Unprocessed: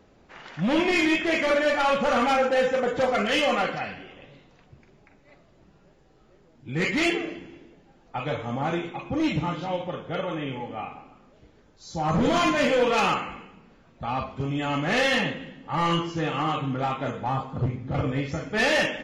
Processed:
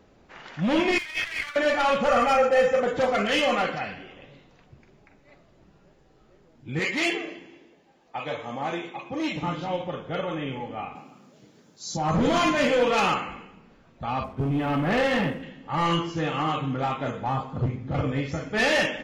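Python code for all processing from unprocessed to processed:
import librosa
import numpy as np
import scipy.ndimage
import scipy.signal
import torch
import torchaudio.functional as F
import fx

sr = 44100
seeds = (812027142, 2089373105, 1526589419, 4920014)

y = fx.chain(x, sr, fx.over_compress(threshold_db=-29.0, ratio=-1.0),
    fx.highpass(hz=1200.0, slope=24),
    fx.running_max(window=3), at=(0.98, 1.56))
y = fx.chain(y, sr, fx.peak_eq(hz=3700.0, db=-9.0, octaves=0.35),
    fx.comb(ms=1.6, depth=0.56), at=(2.08, 2.81))
y = fx.chain(y, sr, fx.highpass(hz=410.0, slope=6),
    fx.notch(hz=1400.0, q=8.8), at=(6.79, 9.43))
y = fx.chain(y, sr, fx.highpass(hz=150.0, slope=24),
    fx.bass_treble(bass_db=8, treble_db=12), at=(10.95, 11.97))
y = fx.chain(y, sr, fx.spacing_loss(db_at_10k=36),
    fx.leveller(passes=2),
    fx.upward_expand(threshold_db=-32.0, expansion=1.5), at=(14.24, 15.43))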